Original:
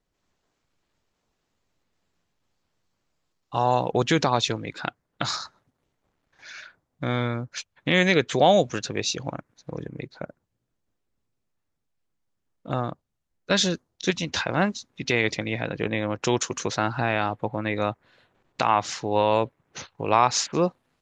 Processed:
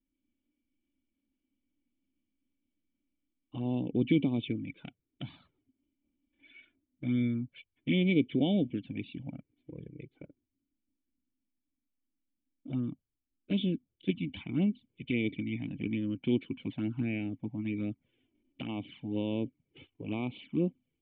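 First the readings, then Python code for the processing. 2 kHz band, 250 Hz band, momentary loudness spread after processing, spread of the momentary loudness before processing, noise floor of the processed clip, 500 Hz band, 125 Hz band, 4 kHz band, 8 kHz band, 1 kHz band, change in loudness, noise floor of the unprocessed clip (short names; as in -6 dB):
-15.5 dB, -1.5 dB, 18 LU, 18 LU, under -85 dBFS, -14.0 dB, -5.5 dB, -15.5 dB, under -40 dB, -27.0 dB, -8.5 dB, -78 dBFS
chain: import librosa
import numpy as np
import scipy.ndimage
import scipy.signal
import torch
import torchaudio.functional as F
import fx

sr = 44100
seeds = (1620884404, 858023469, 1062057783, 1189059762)

y = fx.env_flanger(x, sr, rest_ms=3.5, full_db=-18.0)
y = fx.formant_cascade(y, sr, vowel='i')
y = y * librosa.db_to_amplitude(5.5)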